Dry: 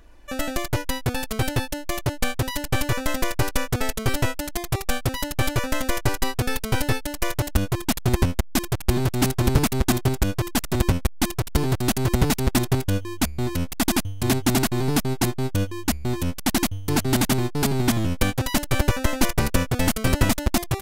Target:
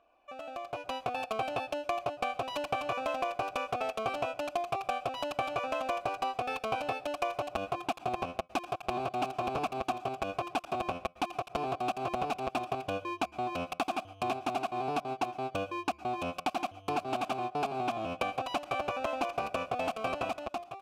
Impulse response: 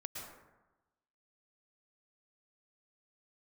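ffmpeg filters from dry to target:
-filter_complex "[0:a]asplit=3[s0][s1][s2];[s0]bandpass=f=730:t=q:w=8,volume=1[s3];[s1]bandpass=f=1090:t=q:w=8,volume=0.501[s4];[s2]bandpass=f=2440:t=q:w=8,volume=0.355[s5];[s3][s4][s5]amix=inputs=3:normalize=0,acompressor=threshold=0.00562:ratio=6,asplit=2[s6][s7];[1:a]atrim=start_sample=2205,afade=t=out:st=0.2:d=0.01,atrim=end_sample=9261[s8];[s7][s8]afir=irnorm=-1:irlink=0,volume=0.316[s9];[s6][s9]amix=inputs=2:normalize=0,dynaudnorm=f=300:g=5:m=4.73"

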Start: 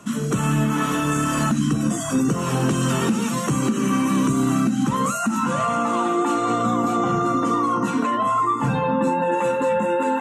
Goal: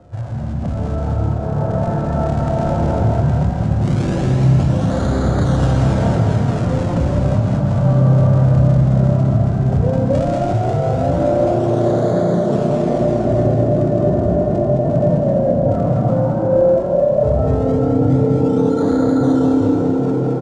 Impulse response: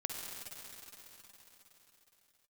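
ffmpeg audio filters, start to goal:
-filter_complex "[0:a]asplit=2[s0][s1];[s1]alimiter=limit=0.0891:level=0:latency=1,volume=0.841[s2];[s0][s2]amix=inputs=2:normalize=0,dynaudnorm=f=350:g=5:m=1.78,acrossover=split=2800[s3][s4];[s4]acrusher=samples=38:mix=1:aa=0.000001:lfo=1:lforange=60.8:lforate=0.29[s5];[s3][s5]amix=inputs=2:normalize=0,asplit=8[s6][s7][s8][s9][s10][s11][s12][s13];[s7]adelay=106,afreqshift=67,volume=0.596[s14];[s8]adelay=212,afreqshift=134,volume=0.327[s15];[s9]adelay=318,afreqshift=201,volume=0.18[s16];[s10]adelay=424,afreqshift=268,volume=0.0989[s17];[s11]adelay=530,afreqshift=335,volume=0.0543[s18];[s12]adelay=636,afreqshift=402,volume=0.0299[s19];[s13]adelay=742,afreqshift=469,volume=0.0164[s20];[s6][s14][s15][s16][s17][s18][s19][s20]amix=inputs=8:normalize=0[s21];[1:a]atrim=start_sample=2205,atrim=end_sample=4410,asetrate=31311,aresample=44100[s22];[s21][s22]afir=irnorm=-1:irlink=0,asetrate=22050,aresample=44100,volume=0.631"

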